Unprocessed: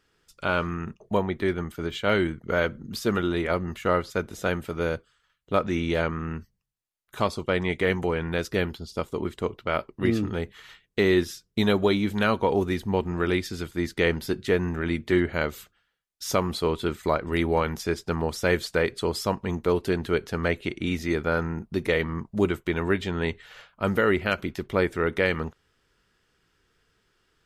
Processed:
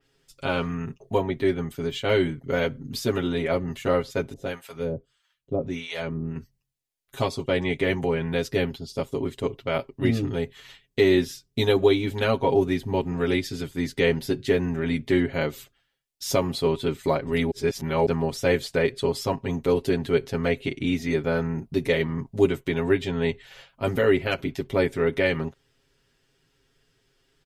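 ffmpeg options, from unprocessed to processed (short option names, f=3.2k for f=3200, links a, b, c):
-filter_complex "[0:a]asettb=1/sr,asplit=3[a][b][c];[a]atrim=end=4.334[d];[b]atrim=start=4.33:end=6.36,asetpts=PTS-STARTPTS,afade=t=in:d=0.004:c=qsin,afade=t=out:st=2.026:d=0.004:c=qsin,acrossover=split=690[e][f];[e]aeval=exprs='val(0)*(1-1/2+1/2*cos(2*PI*1.6*n/s))':c=same[g];[f]aeval=exprs='val(0)*(1-1/2-1/2*cos(2*PI*1.6*n/s))':c=same[h];[g][h]amix=inputs=2:normalize=0[i];[c]atrim=start=6.356[j];[d][i]acrossfade=d=0.004:c1=hsin:c2=qsin[k];[k][j]acrossfade=d=0.004:c1=qsin:c2=hsin,asplit=3[l][m][n];[l]atrim=end=17.512[o];[m]atrim=start=17.508:end=18.062,asetpts=PTS-STARTPTS,areverse[p];[n]atrim=start=18.058[q];[o][p]acrossfade=d=0.004:c1=hsin:c2=hsin[r];[r][q]acrossfade=d=0.004:c1=hsin:c2=hsin,equalizer=f=1.3k:w=1.5:g=-8,aecho=1:1:7.4:0.95,adynamicequalizer=threshold=0.00794:dfrequency=4100:dqfactor=0.7:tfrequency=4100:tqfactor=0.7:attack=5:release=100:ratio=0.375:range=2.5:mode=cutabove:tftype=highshelf"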